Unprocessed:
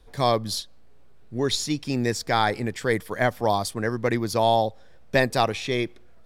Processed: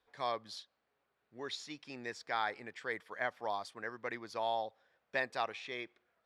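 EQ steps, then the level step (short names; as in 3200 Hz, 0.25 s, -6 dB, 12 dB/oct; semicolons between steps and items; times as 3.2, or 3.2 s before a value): LPF 1600 Hz 12 dB/oct; differentiator; +5.5 dB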